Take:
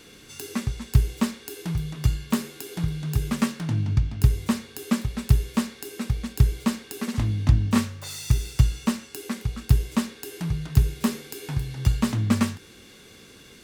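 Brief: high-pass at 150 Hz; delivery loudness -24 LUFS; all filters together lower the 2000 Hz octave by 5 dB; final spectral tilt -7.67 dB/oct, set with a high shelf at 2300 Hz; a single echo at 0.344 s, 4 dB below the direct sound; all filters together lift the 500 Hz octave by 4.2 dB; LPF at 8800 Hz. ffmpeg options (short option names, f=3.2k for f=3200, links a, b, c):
-af "highpass=150,lowpass=8.8k,equalizer=f=500:t=o:g=6,equalizer=f=2k:t=o:g=-3.5,highshelf=f=2.3k:g=-6,aecho=1:1:344:0.631,volume=4.5dB"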